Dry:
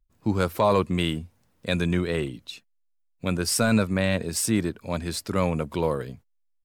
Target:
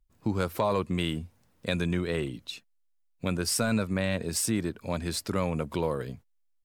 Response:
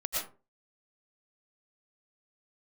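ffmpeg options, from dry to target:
-af "acompressor=threshold=-27dB:ratio=2"

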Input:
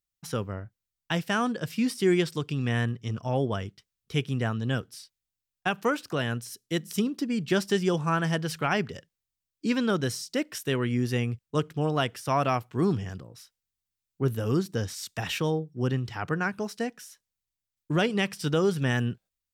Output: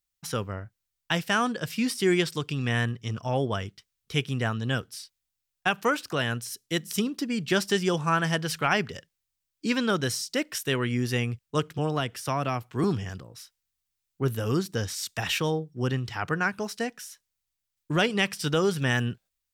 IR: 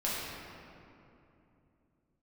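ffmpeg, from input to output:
-filter_complex "[0:a]equalizer=f=220:w=0.3:g=-5.5,asettb=1/sr,asplit=3[a][b][c];[a]atrim=end=11.784[d];[b]atrim=start=11.78:end=12.84,asetpts=PTS-STARTPTS,afade=t=in:d=0.004:c=qsin,afade=t=out:st=1.056:d=0.004:c=qsin,acrossover=split=380[e][f];[f]acompressor=threshold=-33dB:ratio=3[g];[e][g]amix=inputs=2:normalize=0[h];[c]atrim=start=12.836[i];[d][h]acrossfade=d=0.004:c1=hsin:c2=qsin[j];[j][i]acrossfade=d=0.004:c1=qsin:c2=hsin,volume=4.5dB"

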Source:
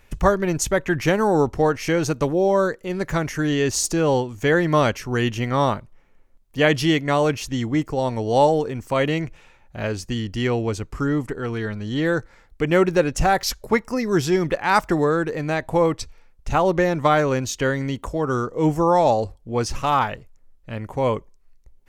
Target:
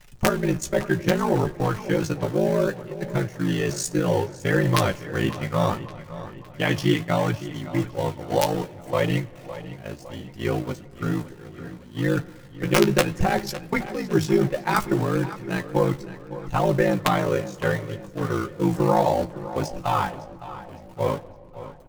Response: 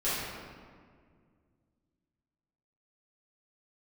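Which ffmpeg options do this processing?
-filter_complex "[0:a]aeval=exprs='val(0)+0.5*0.0531*sgn(val(0))':c=same,agate=range=-16dB:threshold=-20dB:ratio=16:detection=peak,equalizer=f=130:t=o:w=0.93:g=4.5,aecho=1:1:5.6:0.55,acrusher=bits=8:mode=log:mix=0:aa=0.000001,aeval=exprs='(mod(1.41*val(0)+1,2)-1)/1.41':c=same,aeval=exprs='val(0)*sin(2*PI*27*n/s)':c=same,flanger=delay=6.4:depth=8.7:regen=36:speed=0.66:shape=triangular,asplit=2[a][b];[b]adelay=560,lowpass=f=4.9k:p=1,volume=-14.5dB,asplit=2[c][d];[d]adelay=560,lowpass=f=4.9k:p=1,volume=0.53,asplit=2[e][f];[f]adelay=560,lowpass=f=4.9k:p=1,volume=0.53,asplit=2[g][h];[h]adelay=560,lowpass=f=4.9k:p=1,volume=0.53,asplit=2[i][j];[j]adelay=560,lowpass=f=4.9k:p=1,volume=0.53[k];[a][c][e][g][i][k]amix=inputs=6:normalize=0,asplit=2[l][m];[1:a]atrim=start_sample=2205,asetrate=35721,aresample=44100[n];[m][n]afir=irnorm=-1:irlink=0,volume=-31.5dB[o];[l][o]amix=inputs=2:normalize=0"

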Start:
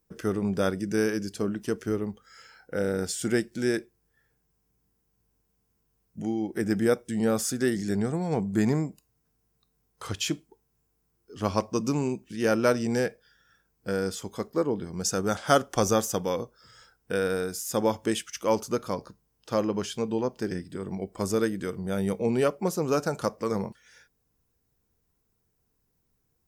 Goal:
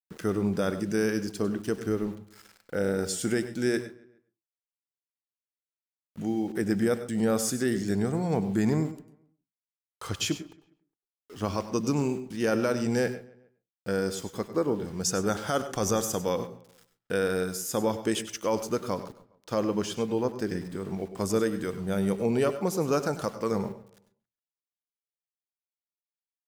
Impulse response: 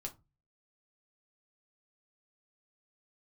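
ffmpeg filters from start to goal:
-filter_complex "[0:a]alimiter=limit=-16dB:level=0:latency=1:release=36,aeval=exprs='val(0)*gte(abs(val(0)),0.00447)':c=same,asplit=2[a][b];[b]adelay=137,lowpass=f=3.3k:p=1,volume=-21dB,asplit=2[c][d];[d]adelay=137,lowpass=f=3.3k:p=1,volume=0.44,asplit=2[e][f];[f]adelay=137,lowpass=f=3.3k:p=1,volume=0.44[g];[a][c][e][g]amix=inputs=4:normalize=0,asplit=2[h][i];[1:a]atrim=start_sample=2205,afade=t=out:st=0.16:d=0.01,atrim=end_sample=7497,adelay=97[j];[i][j]afir=irnorm=-1:irlink=0,volume=-9.5dB[k];[h][k]amix=inputs=2:normalize=0"

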